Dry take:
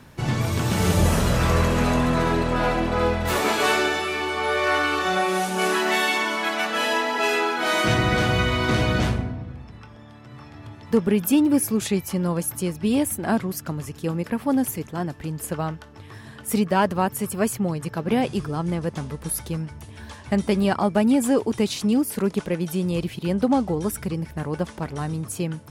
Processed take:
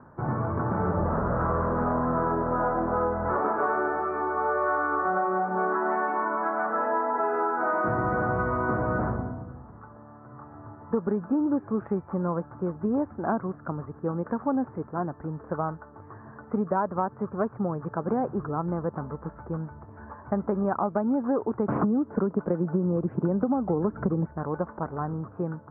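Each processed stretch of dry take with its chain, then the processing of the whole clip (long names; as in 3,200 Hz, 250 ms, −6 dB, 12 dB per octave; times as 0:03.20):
0:21.68–0:24.26: high-pass filter 160 Hz 6 dB per octave + low-shelf EQ 450 Hz +11 dB + multiband upward and downward compressor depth 100%
whole clip: Butterworth low-pass 1,400 Hz 48 dB per octave; spectral tilt +2.5 dB per octave; downward compressor 5 to 1, threshold −24 dBFS; level +2 dB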